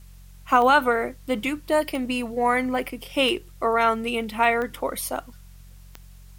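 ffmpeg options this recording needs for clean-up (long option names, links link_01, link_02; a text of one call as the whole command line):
ffmpeg -i in.wav -af "adeclick=threshold=4,bandreject=frequency=45.5:width_type=h:width=4,bandreject=frequency=91:width_type=h:width=4,bandreject=frequency=136.5:width_type=h:width=4,bandreject=frequency=182:width_type=h:width=4,agate=range=-21dB:threshold=-38dB" out.wav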